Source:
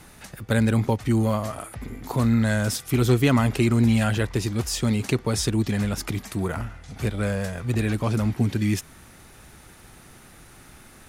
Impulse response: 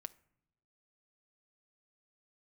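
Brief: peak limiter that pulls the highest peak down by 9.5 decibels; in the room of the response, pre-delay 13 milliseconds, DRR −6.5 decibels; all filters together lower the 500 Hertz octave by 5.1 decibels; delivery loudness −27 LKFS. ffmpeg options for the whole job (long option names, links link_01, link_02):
-filter_complex "[0:a]equalizer=frequency=500:width_type=o:gain=-7,alimiter=limit=-18dB:level=0:latency=1,asplit=2[link_01][link_02];[1:a]atrim=start_sample=2205,adelay=13[link_03];[link_02][link_03]afir=irnorm=-1:irlink=0,volume=11dB[link_04];[link_01][link_04]amix=inputs=2:normalize=0,volume=-5dB"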